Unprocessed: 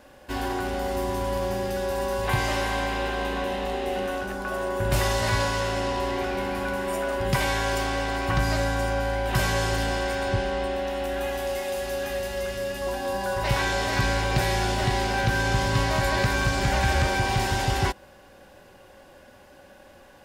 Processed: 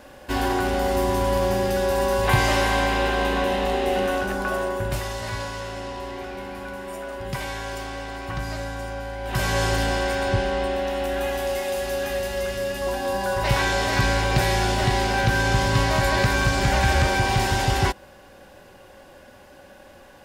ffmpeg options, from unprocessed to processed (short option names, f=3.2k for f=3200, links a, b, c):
-af "volume=14.5dB,afade=t=out:st=4.43:d=0.58:silence=0.266073,afade=t=in:st=9.18:d=0.45:silence=0.354813"